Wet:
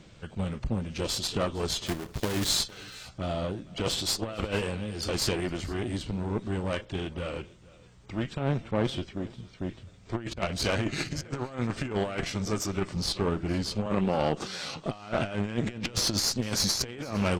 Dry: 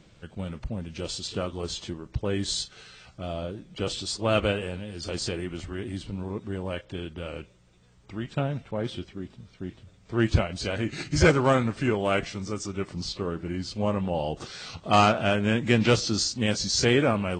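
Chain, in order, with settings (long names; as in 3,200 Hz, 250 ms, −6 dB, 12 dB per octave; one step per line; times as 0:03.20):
0:01.86–0:02.50: one scale factor per block 3 bits
0:13.86–0:14.86: high-pass filter 140 Hz 24 dB per octave
compressor whose output falls as the input rises −28 dBFS, ratio −0.5
harmonic generator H 6 −18 dB, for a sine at −12.5 dBFS
single-tap delay 458 ms −22 dB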